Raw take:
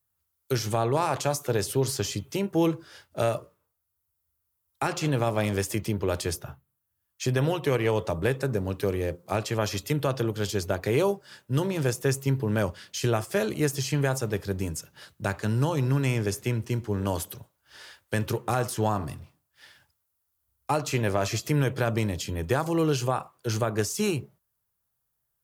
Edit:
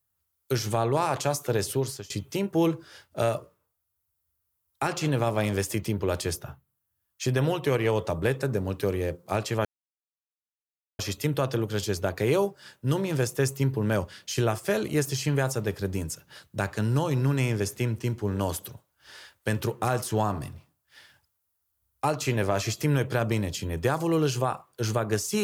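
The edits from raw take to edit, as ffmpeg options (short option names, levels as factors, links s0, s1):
-filter_complex "[0:a]asplit=3[s0][s1][s2];[s0]atrim=end=2.1,asetpts=PTS-STARTPTS,afade=t=out:st=1.71:d=0.39:silence=0.0668344[s3];[s1]atrim=start=2.1:end=9.65,asetpts=PTS-STARTPTS,afade=t=in:d=0.004:c=hsin:silence=0.0668344,afade=t=out:st=7.546:d=0.004:c=hsin,apad=pad_dur=1.34[s4];[s2]atrim=start=9.65,asetpts=PTS-STARTPTS,afade=t=in:d=0.004:c=hsin[s5];[s3][s4][s5]concat=n=3:v=0:a=1"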